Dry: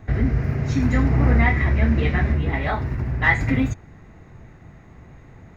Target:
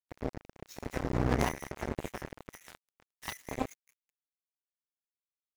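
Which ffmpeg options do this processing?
ffmpeg -i in.wav -filter_complex "[0:a]asettb=1/sr,asplit=3[link_01][link_02][link_03];[link_01]atrim=end=0.414[link_04];[link_02]atrim=start=0.41:end=1.49,asetpts=PTS-STARTPTS,afade=type=in:duration=0.004:curve=qsin,afade=type=out:start_time=1.076:duration=0.004:curve=qsin,asplit=2[link_05][link_06];[link_06]adelay=17,volume=-12dB[link_07];[link_05][link_07]amix=inputs=2:normalize=0,atrim=end_sample=47628[link_08];[link_03]atrim=start=1.486[link_09];[link_04][link_08]acrossfade=duration=0.004:curve1=hsin:curve2=qsin[link_10];[link_10][link_09]acrossfade=duration=0.004:curve1=qsin:curve2=hsin,asettb=1/sr,asplit=3[link_11][link_12][link_13];[link_11]atrim=end=2.194[link_14];[link_12]atrim=start=2.19:end=2.99,asetpts=PTS-STARTPTS,afade=type=in:duration=0.004:curve=qsin,afade=type=out:start_time=0.796:duration=0.004:curve=qsin,bandreject=frequency=50:width_type=h:width=6,bandreject=frequency=100:width_type=h:width=6,bandreject=frequency=150:width_type=h:width=6,bandreject=frequency=200:width_type=h:width=6,bandreject=frequency=250:width_type=h:width=6,bandreject=frequency=300:width_type=h:width=6[link_15];[link_13]atrim=start=2.986[link_16];[link_14][link_15]acrossfade=duration=0.004:curve1=hsin:curve2=qsin[link_17];[link_17][link_16]acrossfade=duration=0.004:curve1=qsin:curve2=hsin,asplit=2[link_18][link_19];[link_19]asplit=7[link_20][link_21][link_22][link_23][link_24][link_25][link_26];[link_20]adelay=200,afreqshift=82,volume=-14.5dB[link_27];[link_21]adelay=400,afreqshift=164,volume=-18.5dB[link_28];[link_22]adelay=600,afreqshift=246,volume=-22.5dB[link_29];[link_23]adelay=800,afreqshift=328,volume=-26.5dB[link_30];[link_24]adelay=1000,afreqshift=410,volume=-30.6dB[link_31];[link_25]adelay=1200,afreqshift=492,volume=-34.6dB[link_32];[link_26]adelay=1400,afreqshift=574,volume=-38.6dB[link_33];[link_27][link_28][link_29][link_30][link_31][link_32][link_33]amix=inputs=7:normalize=0[link_34];[link_18][link_34]amix=inputs=2:normalize=0,flanger=delay=5:depth=3.6:regen=59:speed=1.2:shape=sinusoidal,acrossover=split=1400[link_35][link_36];[link_35]acrusher=bits=2:mix=0:aa=0.5[link_37];[link_36]asoftclip=type=tanh:threshold=-39.5dB[link_38];[link_37][link_38]amix=inputs=2:normalize=0,bass=frequency=250:gain=-5,treble=frequency=4000:gain=12,aeval=exprs='sgn(val(0))*max(abs(val(0))-0.0126,0)':channel_layout=same,aeval=exprs='0.316*(cos(1*acos(clip(val(0)/0.316,-1,1)))-cos(1*PI/2))+0.1*(cos(3*acos(clip(val(0)/0.316,-1,1)))-cos(3*PI/2))+0.0355*(cos(5*acos(clip(val(0)/0.316,-1,1)))-cos(5*PI/2))':channel_layout=same" out.wav

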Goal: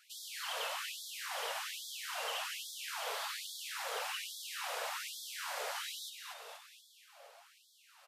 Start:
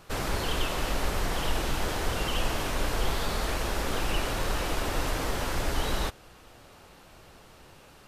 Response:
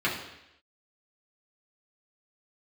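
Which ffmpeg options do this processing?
-filter_complex "[0:a]asplit=9[link_01][link_02][link_03][link_04][link_05][link_06][link_07][link_08][link_09];[link_02]adelay=238,afreqshift=-120,volume=-7dB[link_10];[link_03]adelay=476,afreqshift=-240,volume=-11.6dB[link_11];[link_04]adelay=714,afreqshift=-360,volume=-16.2dB[link_12];[link_05]adelay=952,afreqshift=-480,volume=-20.7dB[link_13];[link_06]adelay=1190,afreqshift=-600,volume=-25.3dB[link_14];[link_07]adelay=1428,afreqshift=-720,volume=-29.9dB[link_15];[link_08]adelay=1666,afreqshift=-840,volume=-34.5dB[link_16];[link_09]adelay=1904,afreqshift=-960,volume=-39.1dB[link_17];[link_01][link_10][link_11][link_12][link_13][link_14][link_15][link_16][link_17]amix=inputs=9:normalize=0,afftfilt=real='re*gte(b*sr/1024,420*pow(3300/420,0.5+0.5*sin(2*PI*1.2*pts/sr)))':imag='im*gte(b*sr/1024,420*pow(3300/420,0.5+0.5*sin(2*PI*1.2*pts/sr)))':win_size=1024:overlap=0.75,volume=-6.5dB"

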